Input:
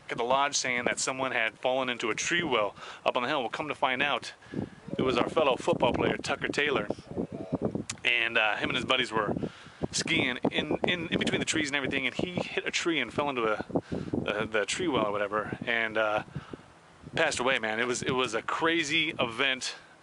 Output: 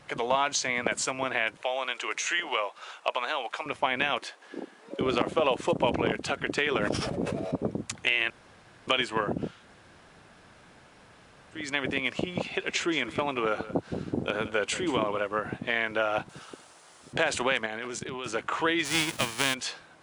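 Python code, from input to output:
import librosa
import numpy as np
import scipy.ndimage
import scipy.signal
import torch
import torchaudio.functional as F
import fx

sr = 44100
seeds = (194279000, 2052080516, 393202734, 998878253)

y = fx.highpass(x, sr, hz=610.0, slope=12, at=(1.62, 3.66))
y = fx.highpass(y, sr, hz=290.0, slope=24, at=(4.19, 5.01))
y = fx.sustainer(y, sr, db_per_s=21.0, at=(6.8, 7.51), fade=0.02)
y = fx.echo_single(y, sr, ms=177, db=-15.5, at=(12.58, 15.19), fade=0.02)
y = fx.bass_treble(y, sr, bass_db=-14, treble_db=13, at=(16.29, 17.13))
y = fx.level_steps(y, sr, step_db=12, at=(17.66, 18.26))
y = fx.envelope_flatten(y, sr, power=0.3, at=(18.84, 19.53), fade=0.02)
y = fx.edit(y, sr, fx.room_tone_fill(start_s=8.3, length_s=0.57),
    fx.room_tone_fill(start_s=9.58, length_s=2.05, crossfade_s=0.24), tone=tone)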